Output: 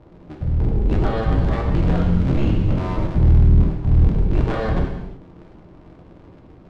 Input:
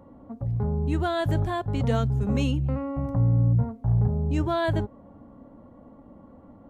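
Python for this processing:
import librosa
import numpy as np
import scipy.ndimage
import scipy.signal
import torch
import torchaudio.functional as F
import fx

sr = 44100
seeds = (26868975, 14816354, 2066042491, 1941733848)

y = fx.cycle_switch(x, sr, every=3, mode='inverted')
y = scipy.signal.sosfilt(scipy.signal.butter(2, 3800.0, 'lowpass', fs=sr, output='sos'), y)
y = fx.low_shelf(y, sr, hz=280.0, db=10.0)
y = fx.rev_gated(y, sr, seeds[0], gate_ms=390, shape='falling', drr_db=0.0)
y = fx.band_squash(y, sr, depth_pct=70, at=(0.91, 3.07))
y = y * 10.0 ** (-4.0 / 20.0)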